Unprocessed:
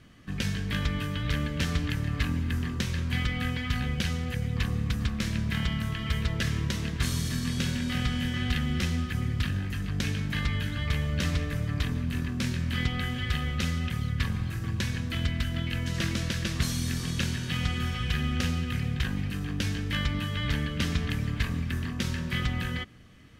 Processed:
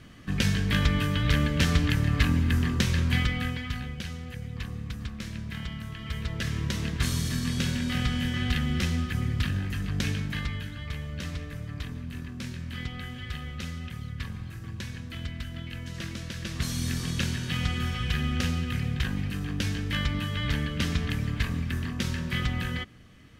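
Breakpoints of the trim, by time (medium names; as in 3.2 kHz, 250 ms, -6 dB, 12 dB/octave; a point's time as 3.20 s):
3.07 s +5 dB
3.95 s -7 dB
5.89 s -7 dB
6.82 s +1 dB
10.11 s +1 dB
10.77 s -7 dB
16.28 s -7 dB
16.85 s +0.5 dB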